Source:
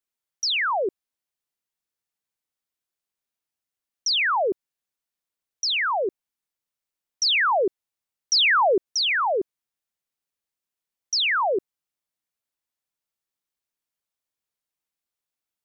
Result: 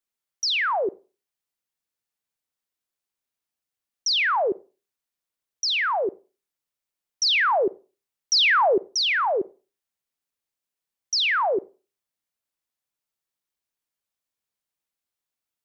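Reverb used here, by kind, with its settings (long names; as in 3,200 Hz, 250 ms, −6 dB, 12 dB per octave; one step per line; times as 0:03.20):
four-comb reverb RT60 0.34 s, combs from 33 ms, DRR 19.5 dB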